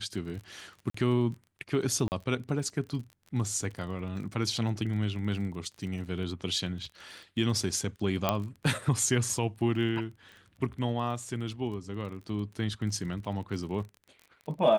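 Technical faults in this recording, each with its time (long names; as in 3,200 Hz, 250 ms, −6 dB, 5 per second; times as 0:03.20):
surface crackle 28 per second −39 dBFS
0:00.90–0:00.94: drop-out 44 ms
0:02.08–0:02.12: drop-out 39 ms
0:08.29: click −11 dBFS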